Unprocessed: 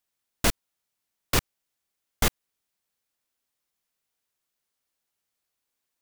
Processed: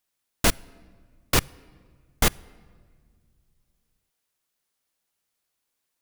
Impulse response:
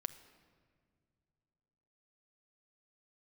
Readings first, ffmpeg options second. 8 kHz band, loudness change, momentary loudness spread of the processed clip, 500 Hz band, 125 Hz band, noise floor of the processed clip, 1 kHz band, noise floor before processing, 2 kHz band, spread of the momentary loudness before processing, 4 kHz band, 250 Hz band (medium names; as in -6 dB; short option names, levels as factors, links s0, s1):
+3.0 dB, +2.5 dB, 0 LU, +2.5 dB, +2.5 dB, -80 dBFS, +2.5 dB, -83 dBFS, +2.5 dB, 0 LU, +2.5 dB, +2.5 dB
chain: -filter_complex "[0:a]asplit=2[s0][s1];[s1]equalizer=f=10000:w=7:g=9.5[s2];[1:a]atrim=start_sample=2205[s3];[s2][s3]afir=irnorm=-1:irlink=0,volume=0.422[s4];[s0][s4]amix=inputs=2:normalize=0"